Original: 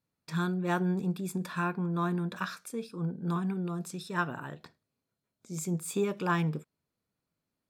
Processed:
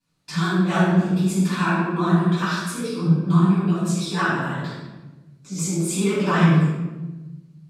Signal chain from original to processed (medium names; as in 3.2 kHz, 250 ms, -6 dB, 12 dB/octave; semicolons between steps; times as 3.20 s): low-pass 8.9 kHz 12 dB/octave; treble shelf 2.4 kHz +8.5 dB; in parallel at -0.5 dB: compression, threshold -38 dBFS, peak gain reduction 14.5 dB; on the sum: chorus 1.3 Hz, delay 18.5 ms, depth 7.5 ms; vibrato 12 Hz 100 cents; simulated room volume 640 m³, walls mixed, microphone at 8.6 m; trim -6 dB